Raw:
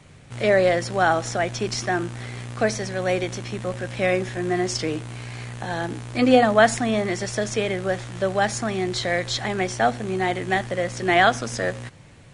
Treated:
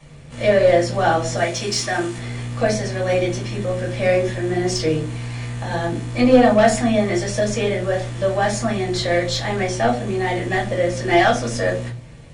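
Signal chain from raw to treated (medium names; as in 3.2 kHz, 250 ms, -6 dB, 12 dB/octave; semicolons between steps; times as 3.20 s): 1.37–2.18 s: tilt EQ +2 dB/octave; saturation -12 dBFS, distortion -15 dB; reverberation RT60 0.35 s, pre-delay 3 ms, DRR -4 dB; trim -3.5 dB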